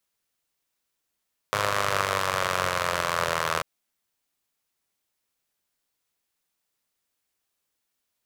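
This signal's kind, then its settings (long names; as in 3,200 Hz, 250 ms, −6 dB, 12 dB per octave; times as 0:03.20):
pulse-train model of a four-cylinder engine, changing speed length 2.09 s, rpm 3,100, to 2,400, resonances 130/570/1,100 Hz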